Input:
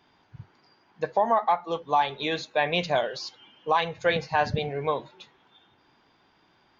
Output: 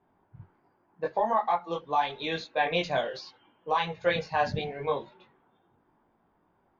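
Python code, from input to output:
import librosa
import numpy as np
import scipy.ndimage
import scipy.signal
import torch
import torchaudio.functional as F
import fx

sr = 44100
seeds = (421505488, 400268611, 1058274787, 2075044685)

y = fx.env_lowpass(x, sr, base_hz=980.0, full_db=-22.0)
y = fx.chorus_voices(y, sr, voices=6, hz=0.78, base_ms=20, depth_ms=3.1, mix_pct=45)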